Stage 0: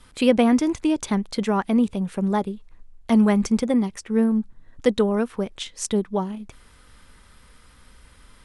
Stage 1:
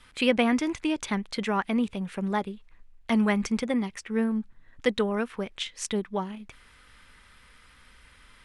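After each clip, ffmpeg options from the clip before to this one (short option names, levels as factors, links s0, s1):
-af "equalizer=f=2200:t=o:w=1.9:g=10,volume=0.447"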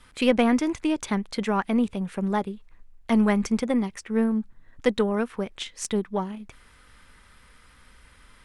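-af "aeval=exprs='0.335*(cos(1*acos(clip(val(0)/0.335,-1,1)))-cos(1*PI/2))+0.015*(cos(4*acos(clip(val(0)/0.335,-1,1)))-cos(4*PI/2))':c=same,equalizer=f=2800:t=o:w=1.9:g=-5,volume=1.41"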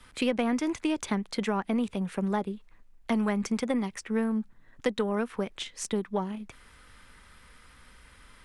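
-filter_complex "[0:a]acrossover=split=120|730[s0][s1][s2];[s0]acompressor=threshold=0.00282:ratio=4[s3];[s1]acompressor=threshold=0.0501:ratio=4[s4];[s2]acompressor=threshold=0.0224:ratio=4[s5];[s3][s4][s5]amix=inputs=3:normalize=0"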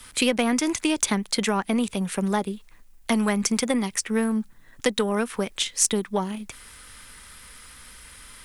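-af "crystalizer=i=3.5:c=0,volume=1.58"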